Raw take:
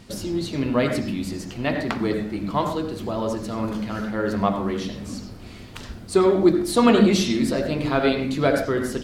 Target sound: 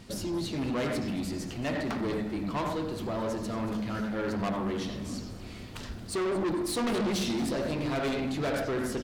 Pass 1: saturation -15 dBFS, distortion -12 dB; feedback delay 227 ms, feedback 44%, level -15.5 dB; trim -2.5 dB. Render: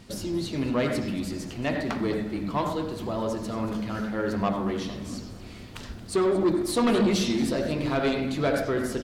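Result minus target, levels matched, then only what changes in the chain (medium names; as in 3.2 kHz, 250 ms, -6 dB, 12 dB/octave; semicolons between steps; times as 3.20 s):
saturation: distortion -7 dB
change: saturation -24.5 dBFS, distortion -5 dB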